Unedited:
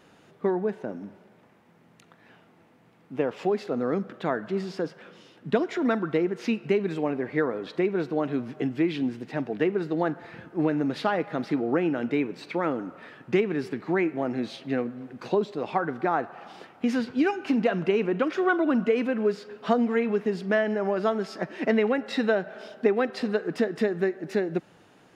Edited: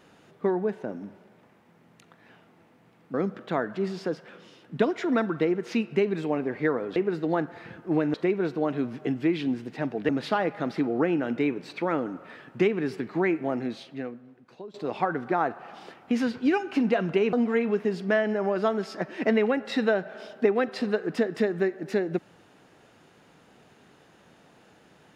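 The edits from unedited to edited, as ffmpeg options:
-filter_complex "[0:a]asplit=7[a][b][c][d][e][f][g];[a]atrim=end=3.142[h];[b]atrim=start=3.868:end=7.692[i];[c]atrim=start=9.638:end=10.822[j];[d]atrim=start=7.688:end=9.642[k];[e]atrim=start=10.818:end=15.47,asetpts=PTS-STARTPTS,afade=t=out:st=3.442:d=1.21:c=qua:silence=0.125893[l];[f]atrim=start=15.47:end=18.062,asetpts=PTS-STARTPTS,afade=t=in:d=0.004:c=hsin:silence=0.125893[m];[g]atrim=start=19.738[n];[h][i]acrossfade=d=0.004:c1=hsin:c2=hsin[o];[o][j]acrossfade=d=0.004:c1=hsin:c2=hsin[p];[p][k]acrossfade=d=0.004:c1=hsin:c2=hsin[q];[l][m]concat=n=2:v=0:a=1[r];[q][r]acrossfade=d=0.004:c1=hsin:c2=hsin[s];[s][n]acrossfade=d=0.004:c1=hsin:c2=hsin"

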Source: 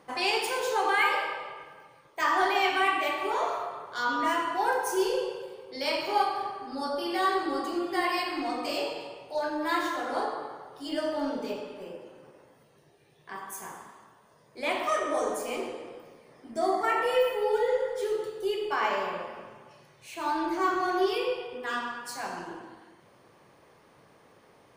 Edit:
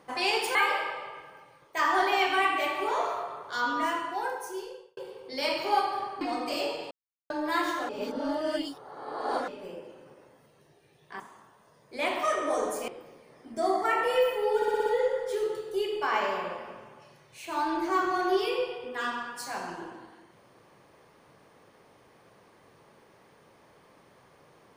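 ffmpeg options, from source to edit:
-filter_complex "[0:a]asplit=15[a][b][c][d][e][f][g][h][i][j][k][l][m][n][o];[a]atrim=end=0.552[p];[b]atrim=start=0.978:end=5.4,asetpts=PTS-STARTPTS,afade=t=out:st=3.052:d=1.37[q];[c]atrim=start=5.4:end=6.642,asetpts=PTS-STARTPTS,afade=t=in:d=0.004:c=hsin[r];[d]atrim=start=8.378:end=9.08,asetpts=PTS-STARTPTS,afade=t=out:st=0.698:d=0.004:c=hsin[s];[e]atrim=start=9.08:end=9.47,asetpts=PTS-STARTPTS,volume=0[t];[f]atrim=start=9.47:end=10.062,asetpts=PTS-STARTPTS,afade=t=in:d=0.004:c=hsin[u];[g]atrim=start=10.058:end=11.652,asetpts=PTS-STARTPTS,areverse[v];[h]atrim=start=11.648:end=13.372[w];[i]atrim=start=13.838:end=15.522[x];[j]atrim=start=15.868:end=17.612[y];[k]atrim=start=17.548:end=17.612[z];[l]atrim=start=17.548:end=17.612[aa];[m]atrim=start=17.548:end=17.612[ab];[n]atrim=start=17.548:end=17.612[ac];[o]atrim=start=17.548[ad];[q][r]concat=n=2:v=0:a=1[ae];[p][ae]acrossfade=d=0.004:c1=hsin:c2=hsin[af];[s][t][u]concat=n=3:v=0:a=1[ag];[af][ag]acrossfade=d=0.004:c1=hsin:c2=hsin[ah];[ah][v]acrossfade=d=0.004:c1=hsin:c2=hsin[ai];[ai][w]acrossfade=d=0.004:c1=hsin:c2=hsin[aj];[aj][x]acrossfade=d=0.004:c1=hsin:c2=hsin[ak];[ak][y]acrossfade=d=0.004:c1=hsin:c2=hsin[al];[al][z]acrossfade=d=0.004:c1=hsin:c2=hsin[am];[am][aa]acrossfade=d=0.004:c1=hsin:c2=hsin[an];[an][ab]acrossfade=d=0.004:c1=hsin:c2=hsin[ao];[ao][ac]acrossfade=d=0.004:c1=hsin:c2=hsin[ap];[ap][ad]acrossfade=d=0.004:c1=hsin:c2=hsin"

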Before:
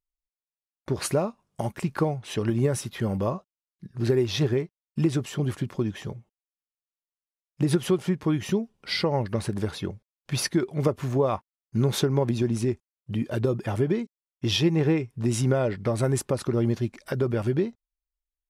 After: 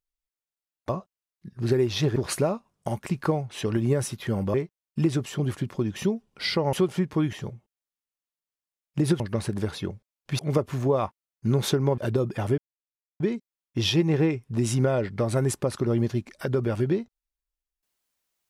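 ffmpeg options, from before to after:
-filter_complex "[0:a]asplit=11[a][b][c][d][e][f][g][h][i][j][k];[a]atrim=end=0.892[l];[b]atrim=start=3.268:end=4.542[m];[c]atrim=start=0.888:end=3.272[n];[d]atrim=start=4.538:end=5.962[o];[e]atrim=start=8.428:end=9.202[p];[f]atrim=start=7.828:end=8.432[q];[g]atrim=start=5.958:end=7.832[r];[h]atrim=start=9.198:end=10.392[s];[i]atrim=start=10.688:end=12.282[t];[j]atrim=start=13.268:end=13.87,asetpts=PTS-STARTPTS,afade=t=out:st=0.598:d=0.004:c=hsin,apad=pad_dur=0.62[u];[k]atrim=start=13.87,asetpts=PTS-STARTPTS,afade=t=in:d=0.004:c=hsin[v];[l][m]acrossfade=d=0.004:c1=hsin:c2=hsin[w];[w][n]acrossfade=d=0.004:c1=hsin:c2=hsin[x];[x][o]acrossfade=d=0.004:c1=hsin:c2=hsin[y];[y][p]acrossfade=d=0.004:c1=hsin:c2=hsin[z];[z][q]acrossfade=d=0.004:c1=hsin:c2=hsin[aa];[aa][r]acrossfade=d=0.004:c1=hsin:c2=hsin[ab];[ab][s]acrossfade=d=0.004:c1=hsin:c2=hsin[ac];[ac][t]acrossfade=d=0.004:c1=hsin:c2=hsin[ad];[u][v]concat=n=2:v=0:a=1[ae];[ad][ae]acrossfade=d=0.004:c1=hsin:c2=hsin"

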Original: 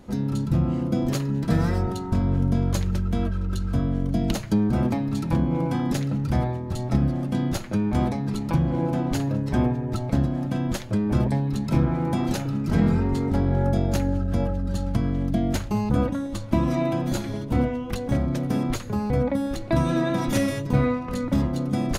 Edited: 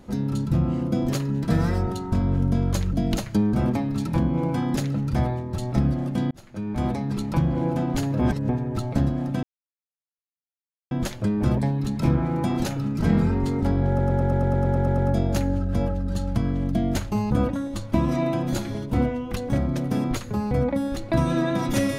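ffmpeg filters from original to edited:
-filter_complex "[0:a]asplit=16[a][b][c][d][e][f][g][h][i][j][k][l][m][n][o][p];[a]atrim=end=2.932[q];[b]atrim=start=4.098:end=7.48,asetpts=PTS-STARTPTS,afade=t=out:st=3.378:d=0.004:c=hsin[r];[c]atrim=start=7.48:end=9.362,asetpts=PTS-STARTPTS,afade=t=in:d=0.7[s];[d]atrim=start=9.358:end=9.662,asetpts=PTS-STARTPTS,areverse[t];[e]atrim=start=9.658:end=10.6,asetpts=PTS-STARTPTS,afade=t=out:st=0.938:d=0.004:c=hsin,apad=pad_dur=1.48[u];[f]atrim=start=10.6:end=13.682,asetpts=PTS-STARTPTS,afade=t=in:d=0.004:c=hsin[v];[g]atrim=start=13.568:end=13.682[w];[h]atrim=start=13.568:end=13.682[x];[i]atrim=start=13.568:end=13.682[y];[j]atrim=start=13.568:end=13.682[z];[k]atrim=start=13.568:end=13.682[aa];[l]atrim=start=13.568:end=13.682[ab];[m]atrim=start=13.568:end=13.682[ac];[n]atrim=start=13.568:end=13.682[ad];[o]atrim=start=13.568:end=13.682[ae];[p]atrim=start=13.568[af];[r][s]concat=n=2:v=0:a=1[ag];[q][ag]acrossfade=d=0.004:c1=hsin:c2=hsin[ah];[ah][t]acrossfade=d=0.004:c1=hsin:c2=hsin[ai];[u][v]concat=n=2:v=0:a=1[aj];[ai][aj]acrossfade=d=0.004:c1=hsin:c2=hsin[ak];[ak][w]acrossfade=d=0.004:c1=hsin:c2=hsin[al];[al][x]acrossfade=d=0.004:c1=hsin:c2=hsin[am];[am][y]acrossfade=d=0.004:c1=hsin:c2=hsin[an];[an][z]acrossfade=d=0.004:c1=hsin:c2=hsin[ao];[ao][aa]acrossfade=d=0.004:c1=hsin:c2=hsin[ap];[ap][ab]acrossfade=d=0.004:c1=hsin:c2=hsin[aq];[aq][ac]acrossfade=d=0.004:c1=hsin:c2=hsin[ar];[ar][ad]acrossfade=d=0.004:c1=hsin:c2=hsin[as];[as][ae]acrossfade=d=0.004:c1=hsin:c2=hsin[at];[at][af]acrossfade=d=0.004:c1=hsin:c2=hsin"

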